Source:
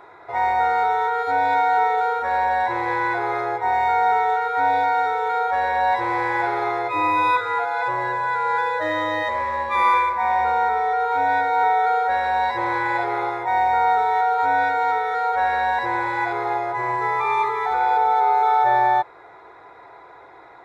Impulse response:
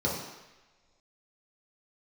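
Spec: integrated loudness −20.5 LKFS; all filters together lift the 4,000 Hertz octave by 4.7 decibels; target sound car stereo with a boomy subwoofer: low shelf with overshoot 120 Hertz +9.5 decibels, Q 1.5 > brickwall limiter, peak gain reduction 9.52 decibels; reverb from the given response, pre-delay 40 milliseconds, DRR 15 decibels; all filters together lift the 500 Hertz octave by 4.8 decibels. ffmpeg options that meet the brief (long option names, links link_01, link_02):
-filter_complex "[0:a]equalizer=frequency=500:width_type=o:gain=6.5,equalizer=frequency=4000:width_type=o:gain=5,asplit=2[link_01][link_02];[1:a]atrim=start_sample=2205,adelay=40[link_03];[link_02][link_03]afir=irnorm=-1:irlink=0,volume=-24.5dB[link_04];[link_01][link_04]amix=inputs=2:normalize=0,lowshelf=frequency=120:width_type=q:width=1.5:gain=9.5,volume=2.5dB,alimiter=limit=-13dB:level=0:latency=1"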